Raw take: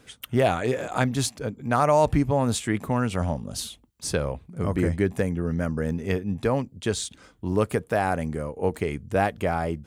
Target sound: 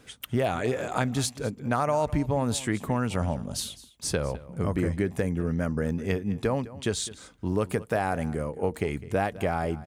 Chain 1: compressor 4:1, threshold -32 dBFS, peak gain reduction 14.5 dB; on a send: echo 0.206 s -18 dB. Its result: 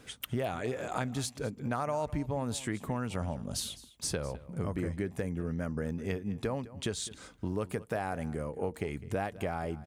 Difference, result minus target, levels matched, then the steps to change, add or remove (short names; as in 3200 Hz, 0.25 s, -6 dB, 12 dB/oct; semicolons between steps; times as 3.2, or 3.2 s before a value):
compressor: peak gain reduction +7.5 dB
change: compressor 4:1, threshold -22 dBFS, peak gain reduction 7 dB